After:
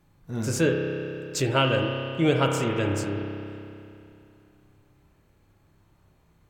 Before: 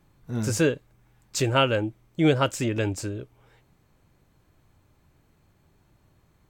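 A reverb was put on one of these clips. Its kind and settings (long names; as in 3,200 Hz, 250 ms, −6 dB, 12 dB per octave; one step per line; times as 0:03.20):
spring reverb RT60 2.8 s, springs 30 ms, chirp 70 ms, DRR 1.5 dB
level −1.5 dB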